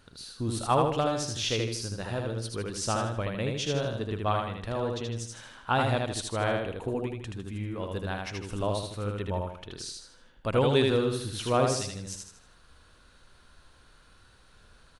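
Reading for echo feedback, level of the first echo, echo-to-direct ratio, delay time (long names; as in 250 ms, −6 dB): 40%, −3.0 dB, −2.0 dB, 78 ms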